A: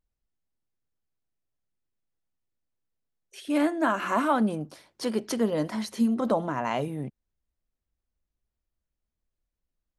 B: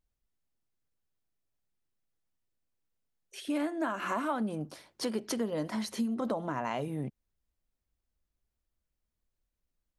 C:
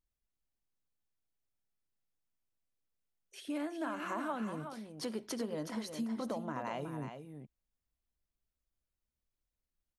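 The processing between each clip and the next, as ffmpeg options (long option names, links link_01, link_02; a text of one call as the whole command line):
ffmpeg -i in.wav -af "acompressor=threshold=-30dB:ratio=4" out.wav
ffmpeg -i in.wav -af "aecho=1:1:369:0.398,volume=-6dB" out.wav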